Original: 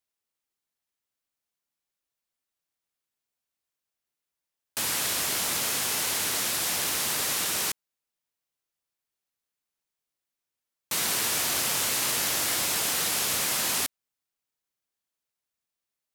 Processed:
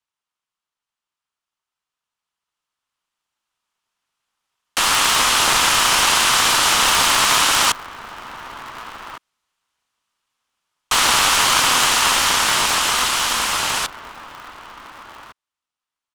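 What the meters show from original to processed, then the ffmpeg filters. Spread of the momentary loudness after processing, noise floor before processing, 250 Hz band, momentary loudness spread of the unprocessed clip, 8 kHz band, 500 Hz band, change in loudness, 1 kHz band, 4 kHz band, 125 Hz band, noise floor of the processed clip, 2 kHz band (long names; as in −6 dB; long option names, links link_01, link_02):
20 LU, below −85 dBFS, +8.0 dB, 4 LU, +8.0 dB, +9.5 dB, +10.5 dB, +18.0 dB, +13.0 dB, +8.0 dB, below −85 dBFS, +14.0 dB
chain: -filter_complex "[0:a]acrossover=split=250|1700[link_01][link_02][link_03];[link_02]highpass=frequency=1100:width_type=q:width=4.9[link_04];[link_03]equalizer=frequency=3000:width_type=o:width=0.39:gain=7[link_05];[link_01][link_04][link_05]amix=inputs=3:normalize=0,lowpass=8500,dynaudnorm=framelen=350:gausssize=21:maxgain=14dB,asplit=2[link_06][link_07];[link_07]adelay=1458,volume=-12dB,highshelf=frequency=4000:gain=-32.8[link_08];[link_06][link_08]amix=inputs=2:normalize=0,aeval=exprs='val(0)*sgn(sin(2*PI*130*n/s))':channel_layout=same"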